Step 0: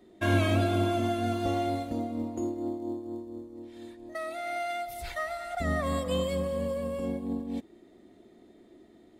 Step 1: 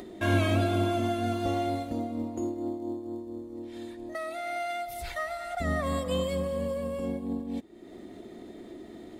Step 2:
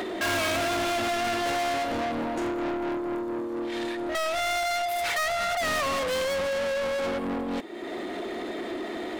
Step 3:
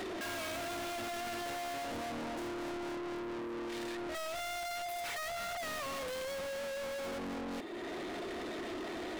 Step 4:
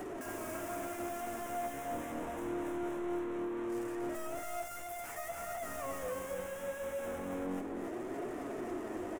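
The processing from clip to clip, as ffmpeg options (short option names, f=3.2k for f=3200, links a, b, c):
-af "acompressor=mode=upward:threshold=-33dB:ratio=2.5"
-filter_complex "[0:a]bass=f=250:g=-5,treble=f=4k:g=-12,asplit=2[a][b];[b]highpass=f=720:p=1,volume=34dB,asoftclip=type=tanh:threshold=-15.5dB[c];[a][c]amix=inputs=2:normalize=0,lowpass=f=1.1k:p=1,volume=-6dB,crystalizer=i=8.5:c=0,volume=-7dB"
-af "asoftclip=type=tanh:threshold=-39dB"
-filter_complex "[0:a]acrossover=split=6300[a][b];[a]adynamicsmooth=sensitivity=3.5:basefreq=820[c];[c][b]amix=inputs=2:normalize=0,flanger=delay=6.6:depth=9.8:regen=42:speed=0.24:shape=triangular,aecho=1:1:280:0.631,volume=4.5dB"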